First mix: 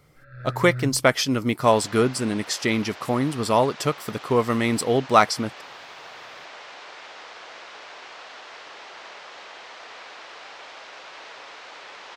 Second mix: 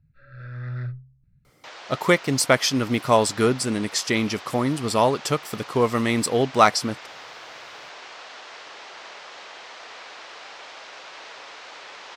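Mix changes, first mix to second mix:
speech: entry +1.45 s; master: add bell 6600 Hz +3 dB 1.6 oct

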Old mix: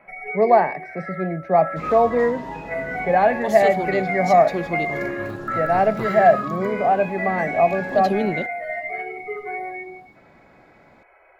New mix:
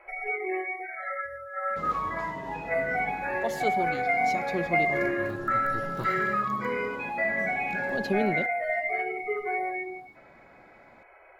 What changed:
speech: muted; second sound -4.5 dB

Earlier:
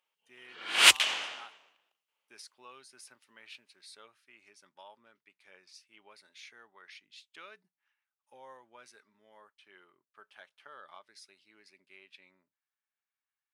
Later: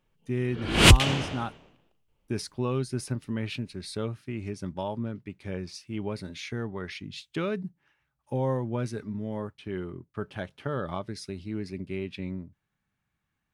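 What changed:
speech +11.0 dB; master: remove HPF 1100 Hz 12 dB/oct

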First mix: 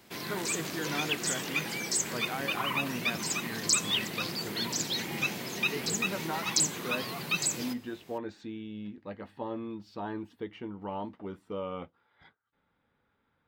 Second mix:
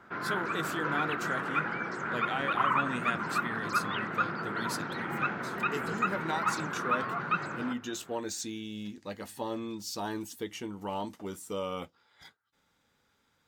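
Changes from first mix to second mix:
speech: remove air absorption 430 m; background: add synth low-pass 1400 Hz, resonance Q 6.5

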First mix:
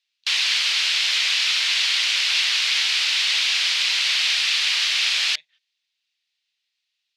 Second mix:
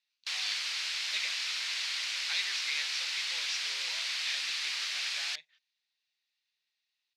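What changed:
background -11.0 dB; master: add bell 3100 Hz -5.5 dB 0.66 oct

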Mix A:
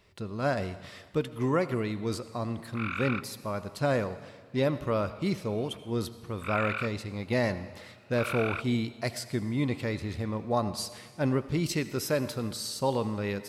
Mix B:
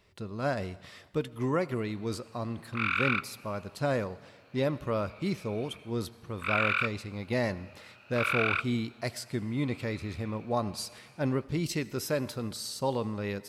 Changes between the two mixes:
speech: send -7.0 dB; background: add tilt shelf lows -8.5 dB, about 680 Hz

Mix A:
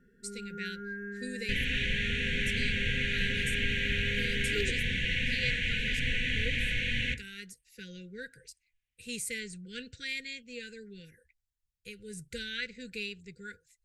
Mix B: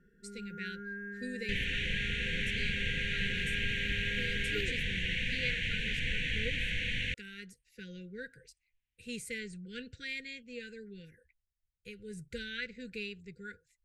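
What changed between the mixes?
speech: add high shelf 3900 Hz -11 dB; reverb: off

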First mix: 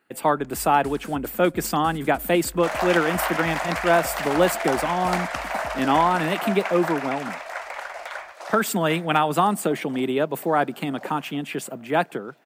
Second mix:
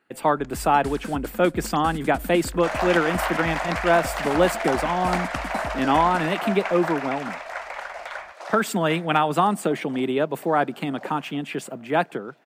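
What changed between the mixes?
first sound +6.5 dB; master: add high shelf 9800 Hz -10.5 dB

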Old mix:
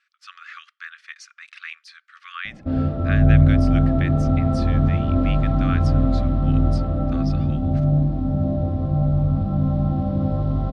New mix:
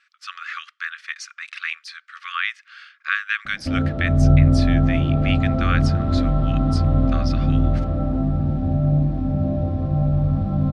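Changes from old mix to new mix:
speech +8.0 dB; background: entry +1.00 s

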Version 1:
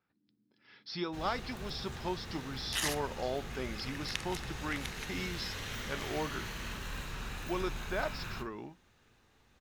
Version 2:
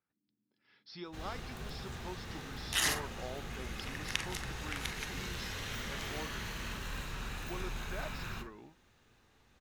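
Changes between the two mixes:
speech -9.0 dB; second sound: send +11.5 dB

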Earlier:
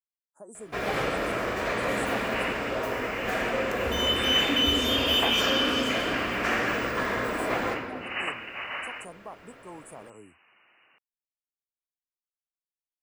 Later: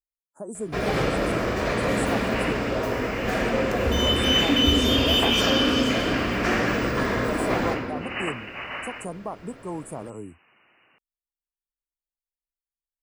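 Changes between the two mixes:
speech +6.0 dB; first sound: add bell 5000 Hz +5.5 dB 0.94 oct; master: add low shelf 390 Hz +10.5 dB

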